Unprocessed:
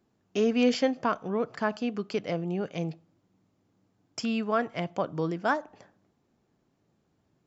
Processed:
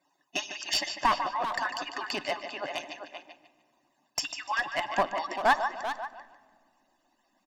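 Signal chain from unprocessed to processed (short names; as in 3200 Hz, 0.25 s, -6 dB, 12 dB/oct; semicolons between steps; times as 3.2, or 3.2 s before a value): median-filter separation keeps percussive; comb 1.1 ms, depth 97%; in parallel at -2.5 dB: compressor, threshold -40 dBFS, peak gain reduction 20 dB; on the sum: HPF 380 Hz 12 dB/oct; on a send: feedback echo 0.148 s, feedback 27%, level -10 dB; on the sum: one-sided clip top -25.5 dBFS; speakerphone echo 0.39 s, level -7 dB; shoebox room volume 3600 m³, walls mixed, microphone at 0.34 m; gain +3 dB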